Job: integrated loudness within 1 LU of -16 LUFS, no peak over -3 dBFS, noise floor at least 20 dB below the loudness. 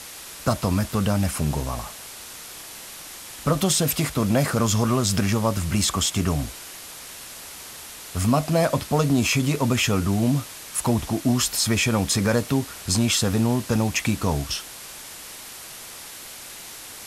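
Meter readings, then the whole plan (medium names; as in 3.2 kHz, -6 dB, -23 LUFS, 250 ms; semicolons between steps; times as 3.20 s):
noise floor -40 dBFS; noise floor target -43 dBFS; loudness -22.5 LUFS; peak level -7.5 dBFS; loudness target -16.0 LUFS
-> noise print and reduce 6 dB; trim +6.5 dB; peak limiter -3 dBFS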